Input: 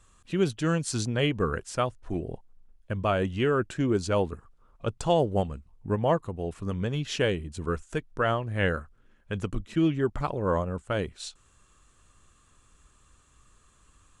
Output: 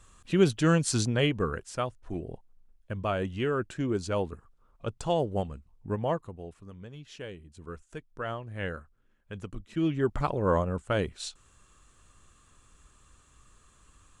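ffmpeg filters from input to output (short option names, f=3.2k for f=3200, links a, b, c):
-af "volume=19.5dB,afade=t=out:st=0.88:d=0.68:silence=0.446684,afade=t=out:st=6.01:d=0.66:silence=0.266073,afade=t=in:st=7.27:d=1.14:silence=0.446684,afade=t=in:st=9.65:d=0.51:silence=0.334965"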